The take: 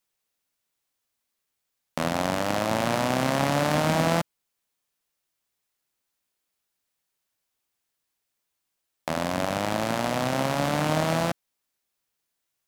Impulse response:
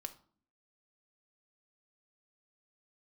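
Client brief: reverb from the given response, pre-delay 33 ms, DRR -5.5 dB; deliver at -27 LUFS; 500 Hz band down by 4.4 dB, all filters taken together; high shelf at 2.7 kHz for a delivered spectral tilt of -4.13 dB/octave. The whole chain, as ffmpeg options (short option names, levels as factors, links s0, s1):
-filter_complex "[0:a]equalizer=f=500:t=o:g=-6,highshelf=f=2700:g=3,asplit=2[s0][s1];[1:a]atrim=start_sample=2205,adelay=33[s2];[s1][s2]afir=irnorm=-1:irlink=0,volume=2.66[s3];[s0][s3]amix=inputs=2:normalize=0,volume=0.473"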